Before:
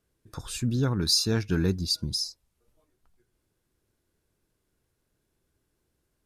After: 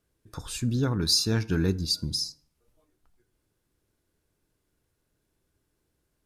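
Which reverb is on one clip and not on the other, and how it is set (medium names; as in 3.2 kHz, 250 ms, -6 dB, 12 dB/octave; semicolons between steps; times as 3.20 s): FDN reverb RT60 0.63 s, low-frequency decay 0.95×, high-frequency decay 0.6×, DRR 15.5 dB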